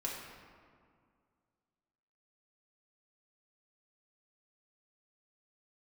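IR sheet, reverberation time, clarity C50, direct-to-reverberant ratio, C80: 2.1 s, 1.5 dB, -4.0 dB, 3.0 dB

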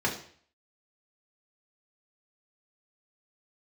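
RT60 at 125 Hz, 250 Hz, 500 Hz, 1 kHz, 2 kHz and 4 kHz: 0.55, 0.50, 0.50, 0.50, 0.55, 0.50 s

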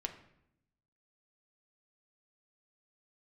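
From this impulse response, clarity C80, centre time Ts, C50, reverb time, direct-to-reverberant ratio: 13.5 dB, 12 ms, 11.0 dB, 0.75 s, 4.5 dB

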